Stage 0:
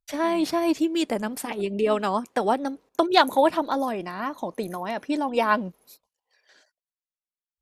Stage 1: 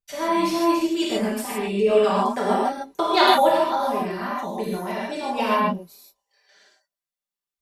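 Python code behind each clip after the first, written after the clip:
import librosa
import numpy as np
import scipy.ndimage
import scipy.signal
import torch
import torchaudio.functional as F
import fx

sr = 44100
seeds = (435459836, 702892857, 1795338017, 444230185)

y = x + 0.77 * np.pad(x, (int(5.1 * sr / 1000.0), 0))[:len(x)]
y = fx.rev_gated(y, sr, seeds[0], gate_ms=180, shape='flat', drr_db=-6.0)
y = F.gain(torch.from_numpy(y), -5.5).numpy()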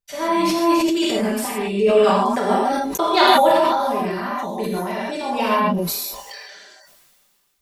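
y = fx.sustainer(x, sr, db_per_s=27.0)
y = F.gain(torch.from_numpy(y), 2.0).numpy()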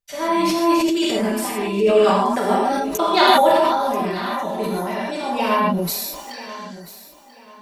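y = fx.echo_feedback(x, sr, ms=987, feedback_pct=30, wet_db=-16.0)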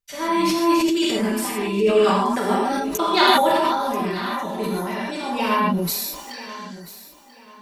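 y = fx.peak_eq(x, sr, hz=650.0, db=-6.5, octaves=0.65)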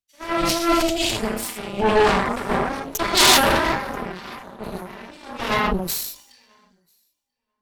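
y = fx.cheby_harmonics(x, sr, harmonics=(8,), levels_db=(-10,), full_scale_db=-3.0)
y = fx.dmg_noise_colour(y, sr, seeds[1], colour='pink', level_db=-57.0)
y = fx.band_widen(y, sr, depth_pct=100)
y = F.gain(torch.from_numpy(y), -5.0).numpy()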